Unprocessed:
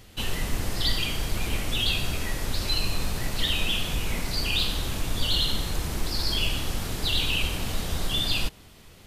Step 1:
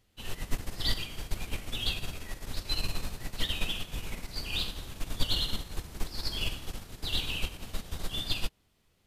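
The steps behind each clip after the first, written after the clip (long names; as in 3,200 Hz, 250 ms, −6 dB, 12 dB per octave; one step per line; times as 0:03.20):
expander for the loud parts 2.5 to 1, over −32 dBFS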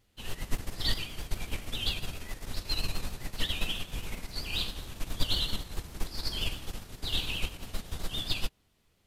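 pitch vibrato 7.5 Hz 72 cents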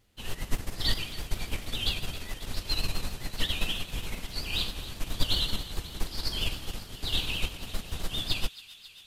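delay with a high-pass on its return 271 ms, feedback 77%, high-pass 1,800 Hz, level −15.5 dB
level +2 dB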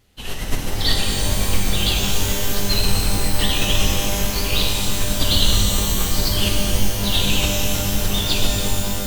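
reverb with rising layers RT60 3.1 s, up +12 semitones, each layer −2 dB, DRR 0.5 dB
level +7.5 dB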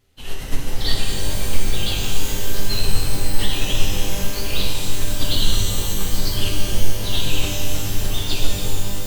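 rectangular room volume 44 cubic metres, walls mixed, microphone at 0.37 metres
level −5.5 dB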